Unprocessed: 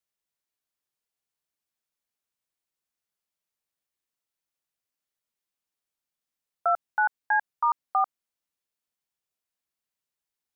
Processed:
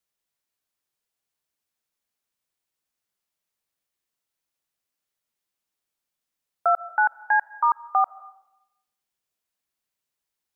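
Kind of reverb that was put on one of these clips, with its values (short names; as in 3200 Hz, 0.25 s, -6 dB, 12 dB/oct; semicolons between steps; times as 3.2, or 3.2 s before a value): digital reverb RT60 0.87 s, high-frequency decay 0.75×, pre-delay 95 ms, DRR 19.5 dB; gain +3.5 dB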